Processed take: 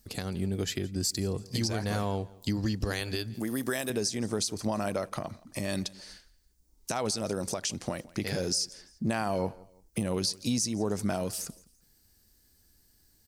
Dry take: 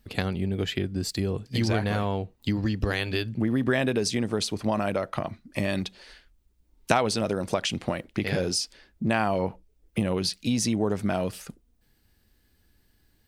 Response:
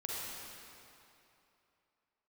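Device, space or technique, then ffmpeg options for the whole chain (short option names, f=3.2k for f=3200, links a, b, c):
over-bright horn tweeter: -filter_complex "[0:a]asettb=1/sr,asplit=3[a][b][c];[a]atrim=end=3.344[d];[b]atrim=start=3.34:end=3.9,asetpts=PTS-STARTPTS,afade=t=in:d=0.004:c=qsin,afade=t=out:st=0.556:d=0.004:c=qsin,aemphasis=mode=production:type=bsi[e];[c]atrim=start=3.896[f];[d][e]acrossfade=d=0.004:c1=hsin:c2=qsin[g];[g][f]acrossfade=d=0.004:c1=qsin:c2=hsin,highshelf=f=4.2k:t=q:w=1.5:g=10,alimiter=limit=-15.5dB:level=0:latency=1:release=192,aecho=1:1:169|338:0.0794|0.0278,volume=-3dB"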